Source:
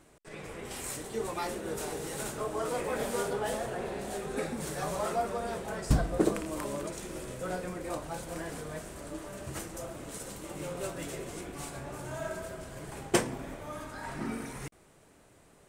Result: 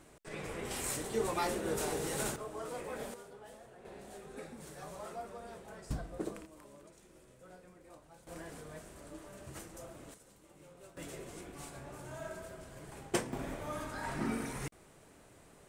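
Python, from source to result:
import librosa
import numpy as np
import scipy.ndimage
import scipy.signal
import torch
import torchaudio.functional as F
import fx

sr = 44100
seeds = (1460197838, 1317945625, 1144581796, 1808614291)

y = fx.gain(x, sr, db=fx.steps((0.0, 1.0), (2.36, -9.0), (3.14, -20.0), (3.85, -13.0), (6.46, -20.0), (8.27, -8.5), (10.14, -19.0), (10.97, -7.0), (13.33, 0.5)))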